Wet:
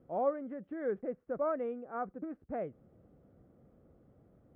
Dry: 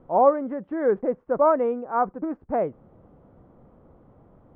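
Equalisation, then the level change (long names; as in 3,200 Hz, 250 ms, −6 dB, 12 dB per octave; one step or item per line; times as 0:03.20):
parametric band 960 Hz −12.5 dB 0.58 octaves
dynamic equaliser 370 Hz, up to −4 dB, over −31 dBFS, Q 0.73
high-pass filter 42 Hz
−8.5 dB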